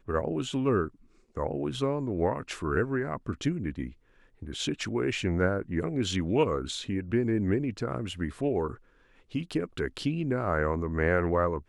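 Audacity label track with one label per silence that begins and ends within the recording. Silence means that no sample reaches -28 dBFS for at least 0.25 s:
0.850000	1.370000	silence
3.850000	4.500000	silence
8.700000	9.350000	silence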